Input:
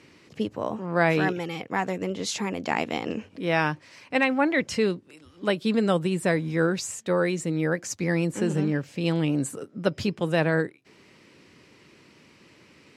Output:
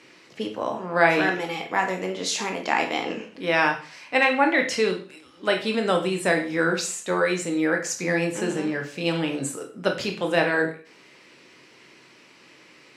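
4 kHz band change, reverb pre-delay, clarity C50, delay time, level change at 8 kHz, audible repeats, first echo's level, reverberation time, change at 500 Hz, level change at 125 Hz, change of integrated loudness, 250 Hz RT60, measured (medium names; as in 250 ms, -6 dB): +5.0 dB, 7 ms, 9.5 dB, no echo, +4.0 dB, no echo, no echo, 0.40 s, +2.0 dB, -6.0 dB, +2.0 dB, 0.40 s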